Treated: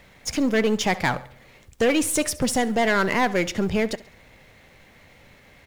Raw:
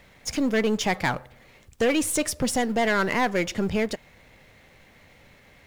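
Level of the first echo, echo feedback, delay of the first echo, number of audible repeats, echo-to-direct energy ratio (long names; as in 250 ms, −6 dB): −19.0 dB, 41%, 68 ms, 3, −18.0 dB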